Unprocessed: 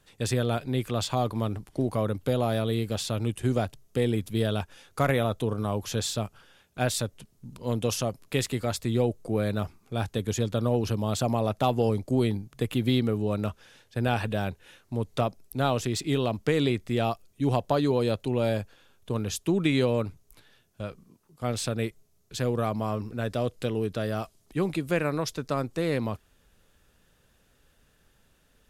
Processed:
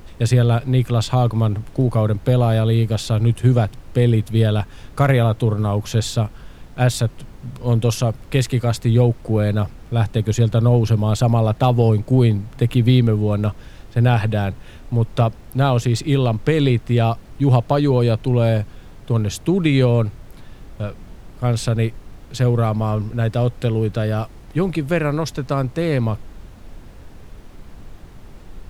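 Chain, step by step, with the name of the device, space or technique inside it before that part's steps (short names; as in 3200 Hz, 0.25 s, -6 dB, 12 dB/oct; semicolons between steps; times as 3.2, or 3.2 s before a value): car interior (bell 120 Hz +8.5 dB 0.59 oct; high shelf 5000 Hz -5 dB; brown noise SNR 18 dB); gain +6.5 dB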